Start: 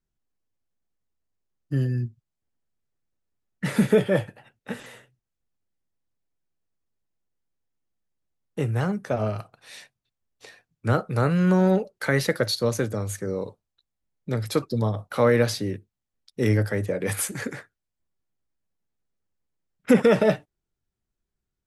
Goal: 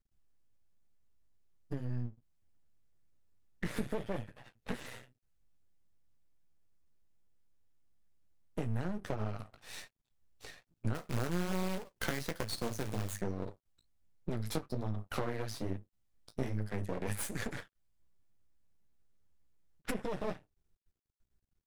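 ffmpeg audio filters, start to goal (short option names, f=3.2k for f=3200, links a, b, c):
-filter_complex "[0:a]lowshelf=f=110:g=10,acompressor=threshold=-30dB:ratio=20,asplit=3[a][b][c];[a]afade=t=out:st=10.94:d=0.02[d];[b]acrusher=bits=2:mode=log:mix=0:aa=0.000001,afade=t=in:st=10.94:d=0.02,afade=t=out:st=13.2:d=0.02[e];[c]afade=t=in:st=13.2:d=0.02[f];[d][e][f]amix=inputs=3:normalize=0,flanger=delay=9.3:depth=9.5:regen=-27:speed=1.2:shape=sinusoidal,aeval=exprs='max(val(0),0)':c=same,volume=4.5dB"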